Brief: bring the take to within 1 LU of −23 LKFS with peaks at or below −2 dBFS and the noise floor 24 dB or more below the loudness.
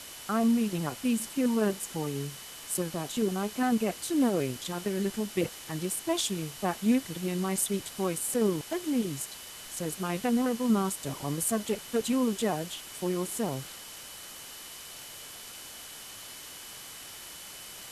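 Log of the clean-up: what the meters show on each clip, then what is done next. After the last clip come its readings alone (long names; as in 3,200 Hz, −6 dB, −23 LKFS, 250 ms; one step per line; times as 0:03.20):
interfering tone 3,000 Hz; level of the tone −52 dBFS; background noise floor −45 dBFS; target noise floor −54 dBFS; integrated loudness −30.0 LKFS; sample peak −13.5 dBFS; target loudness −23.0 LKFS
→ notch filter 3,000 Hz, Q 30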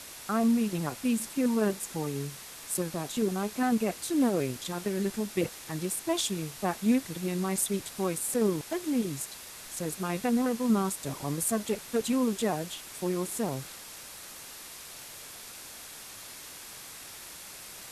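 interfering tone none found; background noise floor −46 dBFS; target noise floor −54 dBFS
→ broadband denoise 8 dB, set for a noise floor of −46 dBFS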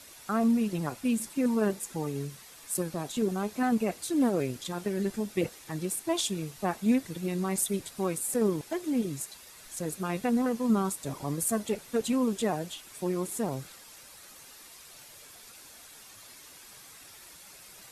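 background noise floor −51 dBFS; target noise floor −55 dBFS
→ broadband denoise 6 dB, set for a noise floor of −51 dBFS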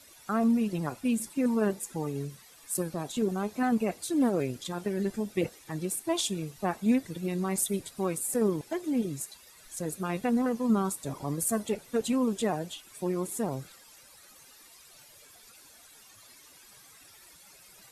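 background noise floor −55 dBFS; integrated loudness −30.5 LKFS; sample peak −13.5 dBFS; target loudness −23.0 LKFS
→ level +7.5 dB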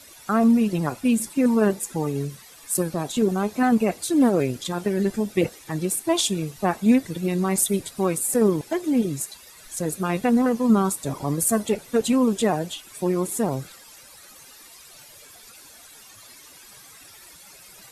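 integrated loudness −23.0 LKFS; sample peak −6.0 dBFS; background noise floor −48 dBFS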